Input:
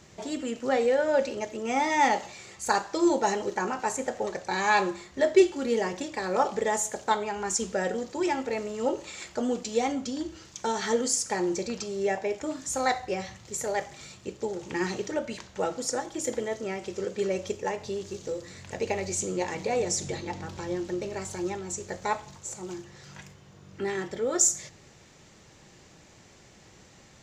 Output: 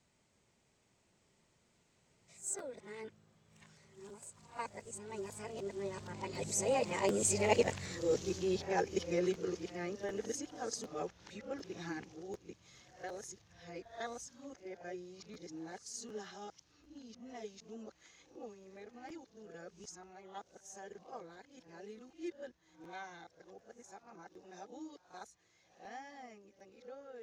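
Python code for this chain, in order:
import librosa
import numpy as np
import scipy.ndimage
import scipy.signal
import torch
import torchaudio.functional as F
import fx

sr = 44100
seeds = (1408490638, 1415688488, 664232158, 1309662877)

y = x[::-1].copy()
y = fx.doppler_pass(y, sr, speed_mps=34, closest_m=23.0, pass_at_s=7.89)
y = fx.buffer_crackle(y, sr, first_s=0.33, period_s=0.75, block=512, kind='repeat')
y = F.gain(torch.from_numpy(y), 1.5).numpy()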